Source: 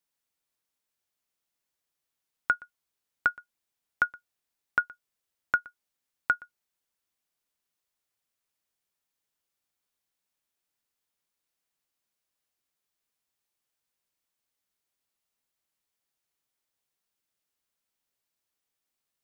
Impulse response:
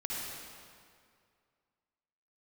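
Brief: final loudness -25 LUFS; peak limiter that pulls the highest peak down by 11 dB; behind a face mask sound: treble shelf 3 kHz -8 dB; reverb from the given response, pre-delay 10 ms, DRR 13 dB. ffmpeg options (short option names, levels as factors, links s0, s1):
-filter_complex "[0:a]alimiter=limit=0.075:level=0:latency=1,asplit=2[s0][s1];[1:a]atrim=start_sample=2205,adelay=10[s2];[s1][s2]afir=irnorm=-1:irlink=0,volume=0.15[s3];[s0][s3]amix=inputs=2:normalize=0,highshelf=f=3000:g=-8,volume=6.68"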